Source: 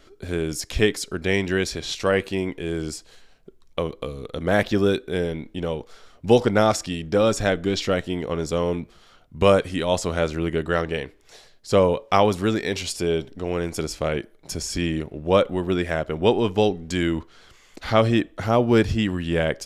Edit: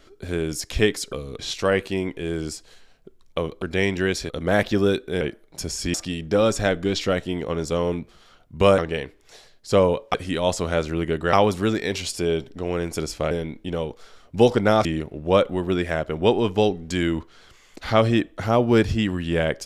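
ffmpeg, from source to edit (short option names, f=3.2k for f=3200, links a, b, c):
-filter_complex "[0:a]asplit=12[a][b][c][d][e][f][g][h][i][j][k][l];[a]atrim=end=1.132[m];[b]atrim=start=4.028:end=4.292[n];[c]atrim=start=1.798:end=4.032[o];[d]atrim=start=1.128:end=1.802[p];[e]atrim=start=4.288:end=5.212[q];[f]atrim=start=14.118:end=14.852[r];[g]atrim=start=6.748:end=9.592[s];[h]atrim=start=10.778:end=12.142[t];[i]atrim=start=9.588:end=10.782[u];[j]atrim=start=12.138:end=14.122[v];[k]atrim=start=5.208:end=6.752[w];[l]atrim=start=14.848[x];[m][n]acrossfade=d=0.004:c1=hsin:c2=hsin[y];[y][o]acrossfade=d=0.004:c1=hsin:c2=hsin[z];[z][p]acrossfade=d=0.004:c1=hsin:c2=hsin[aa];[aa][q]acrossfade=d=0.004:c1=hsin:c2=hsin[ab];[ab][r]acrossfade=d=0.004:c1=hsin:c2=hsin[ac];[ac][s]acrossfade=d=0.004:c1=hsin:c2=hsin[ad];[ad][t]acrossfade=d=0.004:c1=hsin:c2=hsin[ae];[ae][u]acrossfade=d=0.004:c1=hsin:c2=hsin[af];[af][v]acrossfade=d=0.004:c1=hsin:c2=hsin[ag];[ag][w]acrossfade=d=0.004:c1=hsin:c2=hsin[ah];[ah][x]acrossfade=d=0.004:c1=hsin:c2=hsin"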